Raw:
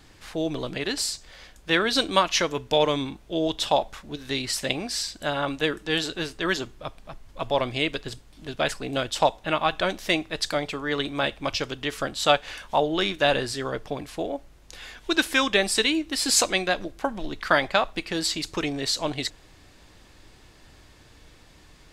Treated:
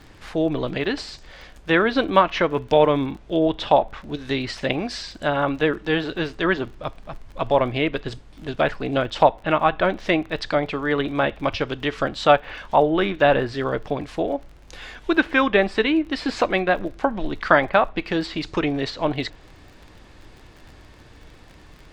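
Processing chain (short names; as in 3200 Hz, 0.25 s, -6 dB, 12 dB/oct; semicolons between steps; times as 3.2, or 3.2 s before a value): treble ducked by the level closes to 2400 Hz, closed at -22 dBFS; crackle 37/s -37 dBFS; high shelf 4200 Hz -11.5 dB; gain +6 dB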